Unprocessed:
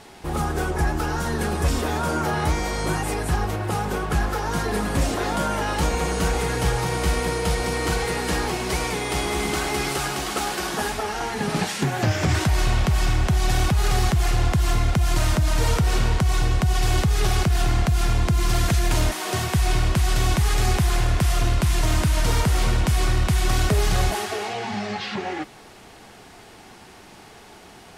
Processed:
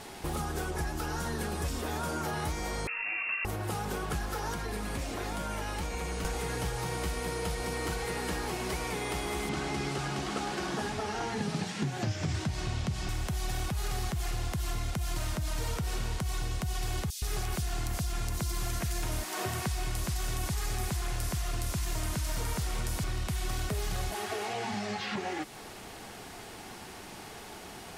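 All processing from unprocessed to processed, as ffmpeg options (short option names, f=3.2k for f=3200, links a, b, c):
-filter_complex "[0:a]asettb=1/sr,asplit=3[a][b][c];[a]atrim=end=2.874[d];[b]atrim=start=2.87:end=3.45,asetpts=PTS-STARTPTS,afade=t=in:d=0.004:c=qsin,afade=t=out:st=0.576:d=0.004:c=qsin,acrossover=split=100|600[e][f][g];[e]acompressor=threshold=-26dB:ratio=4[h];[f]acompressor=threshold=-30dB:ratio=4[i];[g]acompressor=threshold=-34dB:ratio=4[j];[h][i][j]amix=inputs=3:normalize=0,lowpass=f=2.4k:t=q:w=0.5098,lowpass=f=2.4k:t=q:w=0.6013,lowpass=f=2.4k:t=q:w=0.9,lowpass=f=2.4k:t=q:w=2.563,afreqshift=-2800[k];[c]atrim=start=3.446[l];[d][k]acrossfade=d=0.004:c1=hsin:c2=qsin[m];[m][l]acrossfade=d=0.004:c1=qsin:c2=hsin,asettb=1/sr,asplit=3[n][o][p];[n]atrim=end=4.544[q];[o]atrim=start=4.54:end=6.25,asetpts=PTS-STARTPTS,afade=t=in:d=0.004:c=qsin,afade=t=out:st=1.706:d=0.004:c=qsin,equalizer=f=2.3k:w=4.7:g=4.5,acrossover=split=85|230|5800[r][s][t][u];[r]acompressor=threshold=-30dB:ratio=3[v];[s]acompressor=threshold=-39dB:ratio=3[w];[t]acompressor=threshold=-32dB:ratio=3[x];[u]acompressor=threshold=-52dB:ratio=3[y];[v][w][x][y]amix=inputs=4:normalize=0[z];[p]atrim=start=6.246[aa];[q][z]acrossfade=d=0.004:c1=hsin:c2=qsin[ab];[ab][aa]acrossfade=d=0.004:c1=qsin:c2=hsin,asettb=1/sr,asplit=3[ac][ad][ae];[ac]atrim=end=9.494[af];[ad]atrim=start=9.49:end=13.09,asetpts=PTS-STARTPTS,afade=t=in:d=0.004:c=qsin,afade=t=out:st=3.596:d=0.004:c=qsin,highpass=100,lowpass=5.4k,lowshelf=f=270:g=12,bandreject=f=60:t=h:w=6,bandreject=f=120:t=h:w=6,bandreject=f=180:t=h:w=6,bandreject=f=240:t=h:w=6,bandreject=f=300:t=h:w=6,bandreject=f=360:t=h:w=6,bandreject=f=420:t=h:w=6,bandreject=f=480:t=h:w=6,bandreject=f=540:t=h:w=6[ag];[ae]atrim=start=13.086[ah];[af][ag]acrossfade=d=0.004:c1=hsin:c2=qsin[ai];[ai][ah]acrossfade=d=0.004:c1=qsin:c2=hsin,asettb=1/sr,asplit=3[aj][ak][al];[aj]atrim=end=17.104[am];[ak]atrim=start=17.1:end=23.04,asetpts=PTS-STARTPTS,afade=t=in:d=0.004:c=qsin,afade=t=out:st=5.936:d=0.004:c=qsin,highshelf=f=4k:g=8.5,acrossover=split=3300[an][ao];[an]adelay=120[ap];[ap][ao]amix=inputs=2:normalize=0,atrim=end_sample=261954[aq];[al]atrim=start=23.036[ar];[am][aq]acrossfade=d=0.004:c1=hsin:c2=qsin[as];[as][ar]acrossfade=d=0.004:c1=qsin:c2=hsin,acrossover=split=2900|5900[at][au][av];[at]acompressor=threshold=-33dB:ratio=4[aw];[au]acompressor=threshold=-50dB:ratio=4[ax];[av]acompressor=threshold=-51dB:ratio=4[ay];[aw][ax][ay]amix=inputs=3:normalize=0,highshelf=f=10k:g=7.5"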